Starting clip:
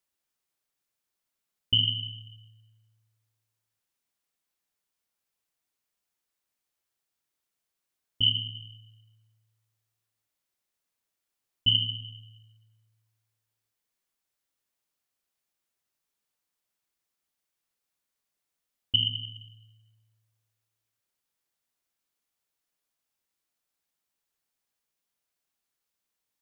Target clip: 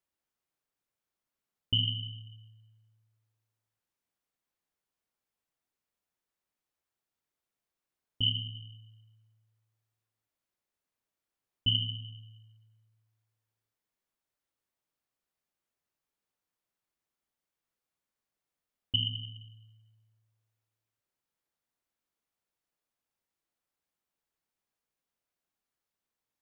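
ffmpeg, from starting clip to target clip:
ffmpeg -i in.wav -af "highshelf=frequency=2200:gain=-8.5" out.wav

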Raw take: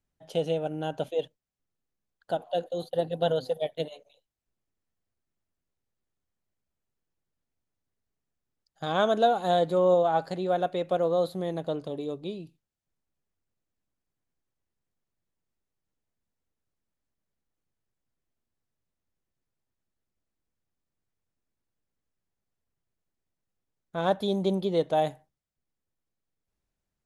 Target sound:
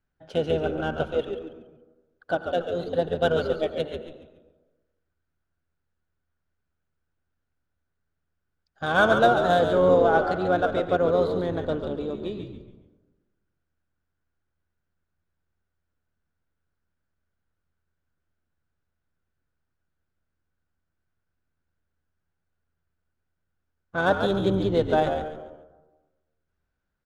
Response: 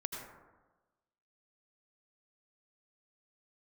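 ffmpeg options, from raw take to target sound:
-filter_complex "[0:a]equalizer=frequency=1500:width_type=o:width=0.27:gain=12.5,adynamicsmooth=sensitivity=6:basefreq=4500,asplit=5[link_01][link_02][link_03][link_04][link_05];[link_02]adelay=140,afreqshift=-81,volume=-7dB[link_06];[link_03]adelay=280,afreqshift=-162,volume=-17.2dB[link_07];[link_04]adelay=420,afreqshift=-243,volume=-27.3dB[link_08];[link_05]adelay=560,afreqshift=-324,volume=-37.5dB[link_09];[link_01][link_06][link_07][link_08][link_09]amix=inputs=5:normalize=0,asplit=2[link_10][link_11];[1:a]atrim=start_sample=2205,asetrate=41013,aresample=44100[link_12];[link_11][link_12]afir=irnorm=-1:irlink=0,volume=-8.5dB[link_13];[link_10][link_13]amix=inputs=2:normalize=0,asplit=3[link_14][link_15][link_16];[link_15]asetrate=22050,aresample=44100,atempo=2,volume=-15dB[link_17];[link_16]asetrate=35002,aresample=44100,atempo=1.25992,volume=-16dB[link_18];[link_14][link_17][link_18]amix=inputs=3:normalize=0"

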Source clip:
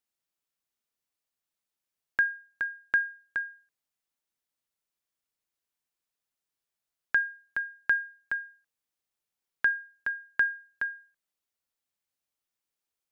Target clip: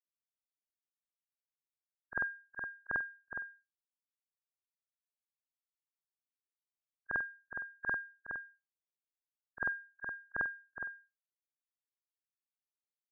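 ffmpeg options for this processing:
ffmpeg -i in.wav -af "afftfilt=real='re':imag='-im':win_size=4096:overlap=0.75,lowpass=frequency=1100:width=0.5412,lowpass=frequency=1100:width=1.3066,afftdn=noise_reduction=29:noise_floor=-61,aeval=exprs='0.0376*(cos(1*acos(clip(val(0)/0.0376,-1,1)))-cos(1*PI/2))+0.000596*(cos(3*acos(clip(val(0)/0.0376,-1,1)))-cos(3*PI/2))':channel_layout=same,volume=9dB" out.wav

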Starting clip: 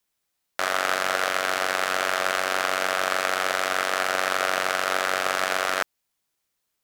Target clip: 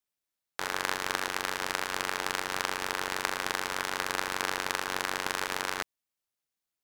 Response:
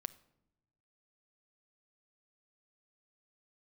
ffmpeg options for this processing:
-af "aeval=exprs='0.631*(cos(1*acos(clip(val(0)/0.631,-1,1)))-cos(1*PI/2))+0.126*(cos(3*acos(clip(val(0)/0.631,-1,1)))-cos(3*PI/2))':channel_layout=same,aeval=exprs='val(0)*sin(2*PI*220*n/s)':channel_layout=same"

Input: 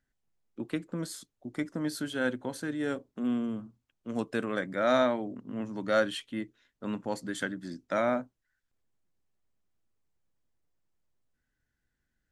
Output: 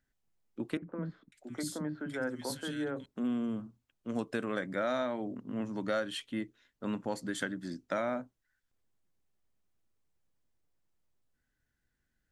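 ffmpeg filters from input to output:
ffmpeg -i in.wav -filter_complex "[0:a]acompressor=threshold=-29dB:ratio=5,asettb=1/sr,asplit=3[link_01][link_02][link_03];[link_01]atrim=end=0.774[link_04];[link_02]atrim=start=0.77:end=3.06,asetpts=PTS-STARTPTS,afade=type=in:duration=0.004:curve=qsin,afade=type=out:start_time=2.286:duration=0.004:curve=qsin,acrossover=split=270|2000[link_05][link_06][link_07];[link_05]adelay=50[link_08];[link_07]adelay=550[link_09];[link_08][link_06][link_09]amix=inputs=3:normalize=0,atrim=end_sample=100989[link_10];[link_03]atrim=start=3.056[link_11];[link_04][link_10]acrossfade=duration=0.004:curve1=hsin:curve2=qsin[link_12];[link_12][link_11]acrossfade=duration=0.004:curve1=qsin:curve2=hsin" out.wav

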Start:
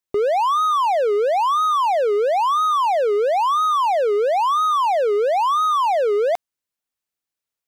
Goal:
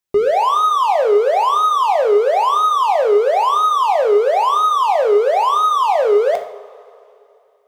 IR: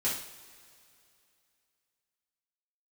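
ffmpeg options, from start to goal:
-filter_complex "[0:a]asplit=2[link_01][link_02];[1:a]atrim=start_sample=2205,lowshelf=frequency=220:gain=7[link_03];[link_02][link_03]afir=irnorm=-1:irlink=0,volume=-8.5dB[link_04];[link_01][link_04]amix=inputs=2:normalize=0"

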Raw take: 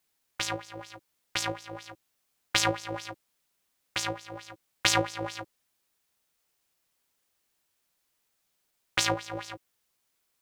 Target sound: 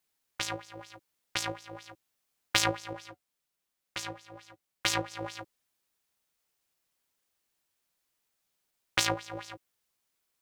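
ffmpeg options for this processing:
ffmpeg -i in.wav -filter_complex "[0:a]aeval=exprs='0.75*(cos(1*acos(clip(val(0)/0.75,-1,1)))-cos(1*PI/2))+0.0376*(cos(7*acos(clip(val(0)/0.75,-1,1)))-cos(7*PI/2))':channel_layout=same,asettb=1/sr,asplit=3[link_01][link_02][link_03];[link_01]atrim=end=2.934[link_04];[link_02]atrim=start=2.93:end=5.11,asetpts=PTS-STARTPTS,afade=type=in:duration=0.004:curve=qsin,afade=type=out:start_time=2.176:duration=0.004:curve=qsin,flanger=delay=5.2:depth=1.8:regen=-61:speed=1.1:shape=triangular[link_05];[link_03]atrim=start=5.106[link_06];[link_04][link_05]acrossfade=duration=0.004:curve1=hsin:curve2=qsin[link_07];[link_07][link_06]acrossfade=duration=0.004:curve1=qsin:curve2=hsin" out.wav

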